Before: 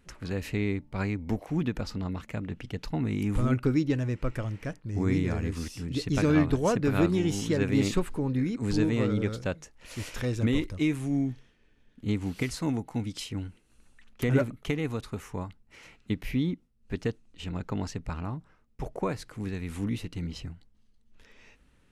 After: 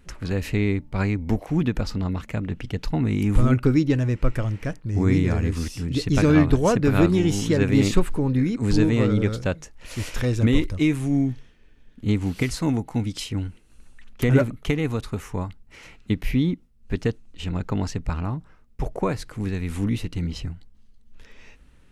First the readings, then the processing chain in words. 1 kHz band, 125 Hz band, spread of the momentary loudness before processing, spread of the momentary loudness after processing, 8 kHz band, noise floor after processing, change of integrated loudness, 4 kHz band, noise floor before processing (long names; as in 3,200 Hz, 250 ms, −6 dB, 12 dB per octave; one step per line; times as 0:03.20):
+5.5 dB, +7.5 dB, 12 LU, 12 LU, +5.5 dB, −52 dBFS, +6.5 dB, +5.5 dB, −63 dBFS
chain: low-shelf EQ 72 Hz +7.5 dB
level +5.5 dB